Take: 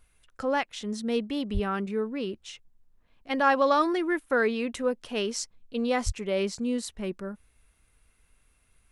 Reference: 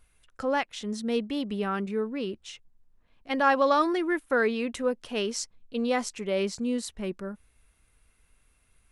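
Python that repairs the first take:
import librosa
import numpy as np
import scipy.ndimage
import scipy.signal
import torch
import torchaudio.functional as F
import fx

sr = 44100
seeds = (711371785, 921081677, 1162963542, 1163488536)

y = fx.highpass(x, sr, hz=140.0, slope=24, at=(1.53, 1.65), fade=0.02)
y = fx.highpass(y, sr, hz=140.0, slope=24, at=(6.05, 6.17), fade=0.02)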